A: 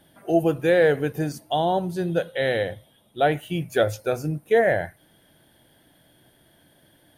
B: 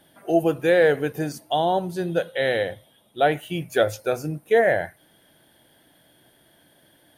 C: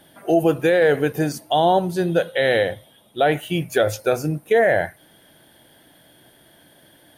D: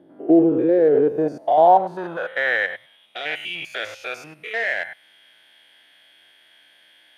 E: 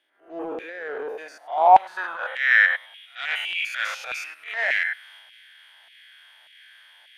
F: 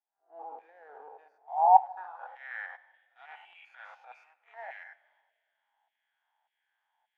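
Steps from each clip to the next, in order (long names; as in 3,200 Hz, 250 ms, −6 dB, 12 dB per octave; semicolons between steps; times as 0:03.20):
low-shelf EQ 170 Hz −8 dB; level +1.5 dB
brickwall limiter −13.5 dBFS, peak gain reduction 6.5 dB; level +5.5 dB
spectrum averaged block by block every 100 ms; in parallel at −11 dB: wave folding −25 dBFS; on the sum: band-pass filter sweep 330 Hz → 2,500 Hz, 0:00.78–0:03.06; level +7.5 dB
auto-filter high-pass saw down 1.7 Hz 760–2,500 Hz; transient designer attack −12 dB, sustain +5 dB; backwards echo 100 ms −22.5 dB
mu-law and A-law mismatch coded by A; resonant band-pass 830 Hz, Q 8.9; convolution reverb, pre-delay 4 ms, DRR 11 dB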